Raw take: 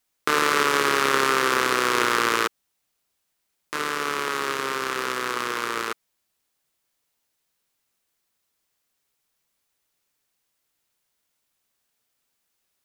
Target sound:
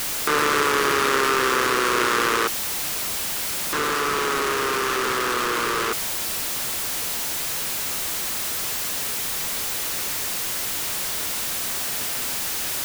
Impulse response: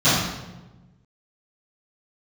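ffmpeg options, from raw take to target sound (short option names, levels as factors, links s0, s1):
-af "aeval=exprs='val(0)+0.5*0.133*sgn(val(0))':c=same,volume=0.708"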